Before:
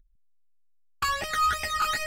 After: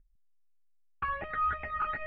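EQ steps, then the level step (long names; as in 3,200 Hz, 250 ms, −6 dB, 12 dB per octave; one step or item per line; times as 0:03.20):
low-pass filter 2,400 Hz 24 dB per octave
high-frequency loss of the air 340 metres
−3.5 dB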